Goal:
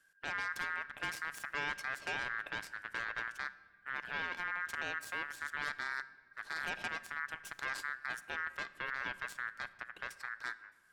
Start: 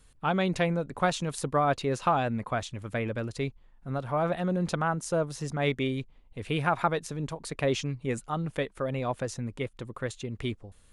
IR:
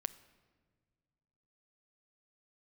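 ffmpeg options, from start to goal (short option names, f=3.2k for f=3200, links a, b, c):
-filter_complex "[0:a]aeval=exprs='0.282*(cos(1*acos(clip(val(0)/0.282,-1,1)))-cos(1*PI/2))+0.112*(cos(3*acos(clip(val(0)/0.282,-1,1)))-cos(3*PI/2))+0.112*(cos(5*acos(clip(val(0)/0.282,-1,1)))-cos(5*PI/2))+0.0501*(cos(7*acos(clip(val(0)/0.282,-1,1)))-cos(7*PI/2))+0.0501*(cos(8*acos(clip(val(0)/0.282,-1,1)))-cos(8*PI/2))':c=same,aeval=exprs='val(0)*sin(2*PI*1600*n/s)':c=same,alimiter=limit=-23dB:level=0:latency=1:release=45[a];[1:a]atrim=start_sample=2205[b];[a][b]afir=irnorm=-1:irlink=0,volume=-3dB"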